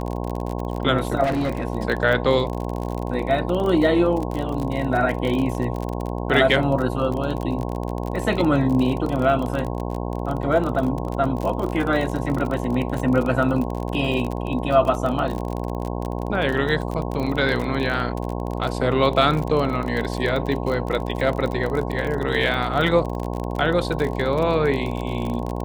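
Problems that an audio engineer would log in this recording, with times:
buzz 60 Hz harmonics 18 -27 dBFS
crackle 35/s -25 dBFS
1.23–1.65 clipped -19 dBFS

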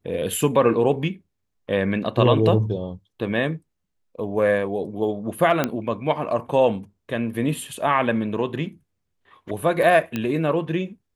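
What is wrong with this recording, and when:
5.64 pop -7 dBFS
10.16 pop -12 dBFS

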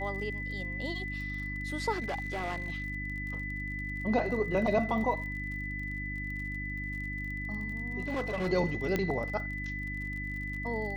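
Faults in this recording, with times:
crackle 40/s -40 dBFS
hum 50 Hz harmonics 6 -39 dBFS
tone 2000 Hz -37 dBFS
1.92–2.84 clipped -30 dBFS
8–8.48 clipped -28.5 dBFS
8.96 pop -16 dBFS

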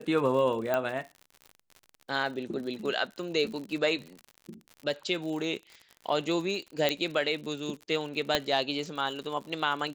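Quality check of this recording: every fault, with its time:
crackle 72/s -37 dBFS
0.74 pop -15 dBFS
6.89 pop -12 dBFS
8.35 pop -10 dBFS

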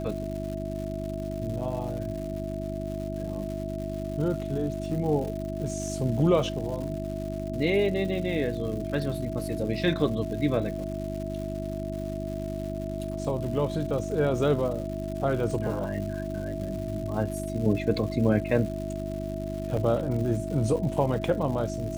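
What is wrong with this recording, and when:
crackle 260/s -36 dBFS
hum 50 Hz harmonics 7 -34 dBFS
tone 650 Hz -35 dBFS
19.77 gap 3 ms

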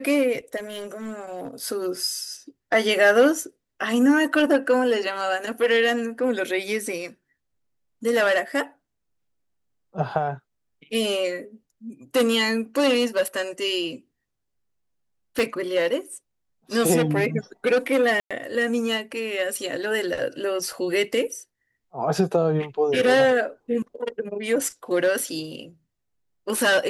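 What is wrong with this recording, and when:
0.56–1.48 clipped -28 dBFS
15.39 pop
18.2–18.31 gap 0.106 s

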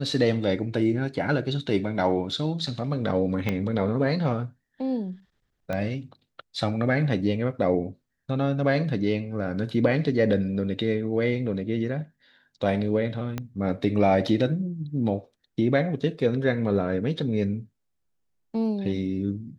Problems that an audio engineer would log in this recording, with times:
3.49 pop -13 dBFS
5.73 pop -17 dBFS
13.38 pop -16 dBFS

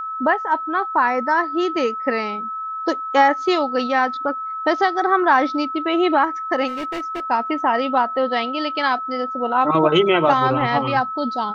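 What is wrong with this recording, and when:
tone 1300 Hz -25 dBFS
6.67–7.21 clipped -23.5 dBFS

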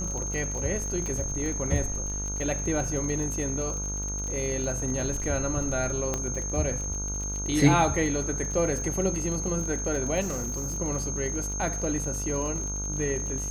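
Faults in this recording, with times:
buzz 50 Hz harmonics 31 -34 dBFS
crackle 42/s -33 dBFS
tone 6400 Hz -32 dBFS
1.06 pop -21 dBFS
6.14 pop -14 dBFS
10.2–10.78 clipped -27 dBFS

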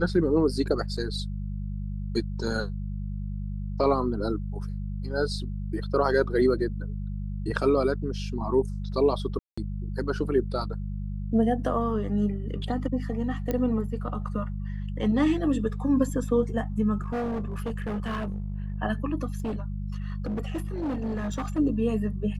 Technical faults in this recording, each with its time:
hum 50 Hz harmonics 4 -32 dBFS
9.39–9.57 gap 0.185 s
13.51 pop -15 dBFS
17–18.8 clipped -26.5 dBFS
19.38–21.59 clipped -26 dBFS

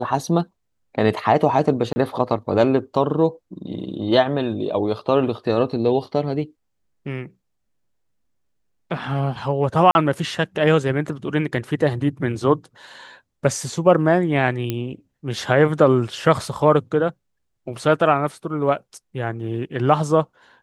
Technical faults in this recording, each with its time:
1.93–1.96 gap 30 ms
9.91–9.95 gap 41 ms
14.7 pop -10 dBFS

